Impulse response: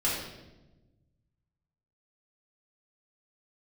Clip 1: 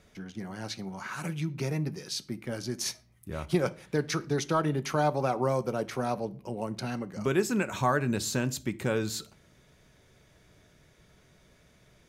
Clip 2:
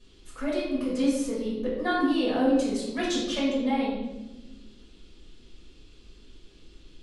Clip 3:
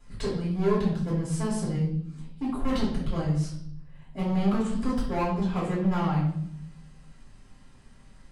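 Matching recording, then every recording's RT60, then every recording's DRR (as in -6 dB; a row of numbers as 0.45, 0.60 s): 2; 0.45, 1.1, 0.70 s; 10.5, -8.0, -7.5 dB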